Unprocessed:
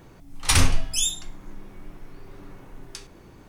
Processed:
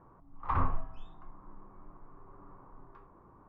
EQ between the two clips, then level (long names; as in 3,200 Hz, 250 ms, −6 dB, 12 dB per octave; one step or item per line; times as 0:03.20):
transistor ladder low-pass 1,200 Hz, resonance 70%
0.0 dB